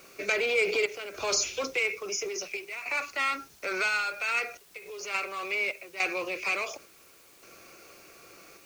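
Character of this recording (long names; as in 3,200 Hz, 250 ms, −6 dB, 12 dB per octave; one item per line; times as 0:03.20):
sample-and-hold tremolo, depth 80%
a quantiser's noise floor 10 bits, dither triangular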